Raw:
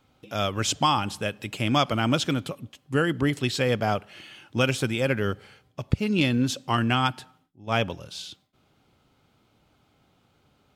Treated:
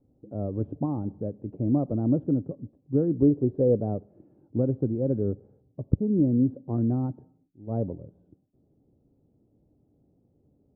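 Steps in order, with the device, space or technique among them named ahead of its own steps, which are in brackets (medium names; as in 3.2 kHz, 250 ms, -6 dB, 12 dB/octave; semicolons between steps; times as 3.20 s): under water (low-pass 520 Hz 24 dB/octave; peaking EQ 290 Hz +4 dB 0.31 oct); 3.22–3.82 s: peaking EQ 470 Hz +6 dB 1 oct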